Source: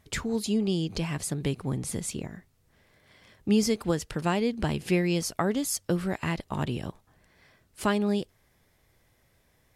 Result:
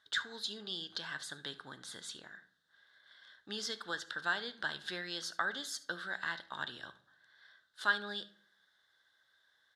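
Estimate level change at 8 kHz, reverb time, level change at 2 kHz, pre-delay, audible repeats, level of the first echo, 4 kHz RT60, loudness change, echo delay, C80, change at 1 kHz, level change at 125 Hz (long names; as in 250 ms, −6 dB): −13.0 dB, 0.60 s, +2.0 dB, 3 ms, 1, −19.5 dB, 0.40 s, −10.0 dB, 73 ms, 21.0 dB, −6.5 dB, −27.0 dB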